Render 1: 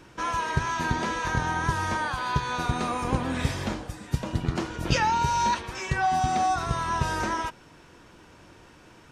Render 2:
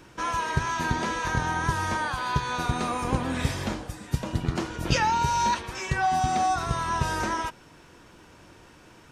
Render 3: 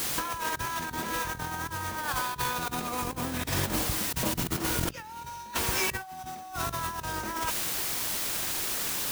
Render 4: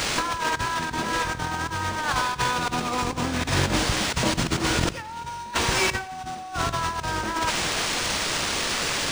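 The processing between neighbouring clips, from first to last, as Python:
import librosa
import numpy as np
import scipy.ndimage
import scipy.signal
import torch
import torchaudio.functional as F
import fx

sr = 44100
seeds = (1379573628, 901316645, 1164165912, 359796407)

y1 = fx.high_shelf(x, sr, hz=9400.0, db=5.0)
y2 = fx.quant_dither(y1, sr, seeds[0], bits=6, dither='triangular')
y2 = fx.over_compress(y2, sr, threshold_db=-31.0, ratio=-0.5)
y3 = fx.echo_feedback(y2, sr, ms=86, feedback_pct=47, wet_db=-18.0)
y3 = np.interp(np.arange(len(y3)), np.arange(len(y3))[::3], y3[::3])
y3 = y3 * 10.0 ** (6.5 / 20.0)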